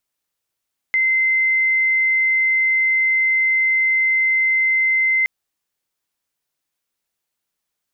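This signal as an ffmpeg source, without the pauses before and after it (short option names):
-f lavfi -i "sine=f=2070:d=4.32:r=44100,volume=4.06dB"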